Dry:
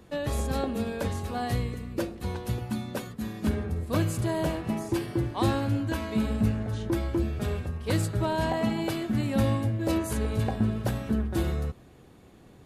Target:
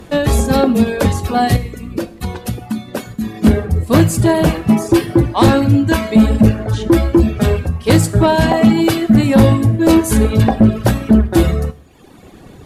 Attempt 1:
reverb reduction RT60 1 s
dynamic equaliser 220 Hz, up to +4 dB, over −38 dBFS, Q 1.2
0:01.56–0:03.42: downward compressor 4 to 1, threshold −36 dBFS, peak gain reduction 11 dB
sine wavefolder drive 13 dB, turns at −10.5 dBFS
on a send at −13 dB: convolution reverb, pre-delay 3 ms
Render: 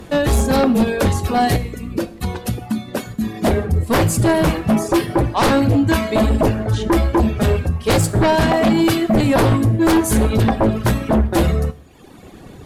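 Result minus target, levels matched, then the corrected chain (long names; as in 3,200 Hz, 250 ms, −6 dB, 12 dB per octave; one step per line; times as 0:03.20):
sine wavefolder: distortion +13 dB
reverb reduction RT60 1 s
dynamic equaliser 220 Hz, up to +4 dB, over −38 dBFS, Q 1.2
0:01.56–0:03.42: downward compressor 4 to 1, threshold −36 dBFS, peak gain reduction 11 dB
sine wavefolder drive 13 dB, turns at −3.5 dBFS
on a send at −13 dB: convolution reverb, pre-delay 3 ms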